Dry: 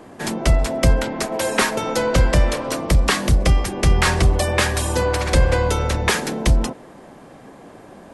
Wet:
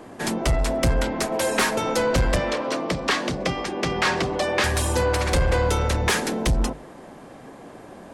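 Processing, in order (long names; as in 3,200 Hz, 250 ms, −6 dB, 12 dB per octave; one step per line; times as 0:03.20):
0:02.36–0:04.64: three-way crossover with the lows and the highs turned down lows −24 dB, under 160 Hz, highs −21 dB, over 6,500 Hz
mains-hum notches 50/100/150/200 Hz
soft clipping −14 dBFS, distortion −13 dB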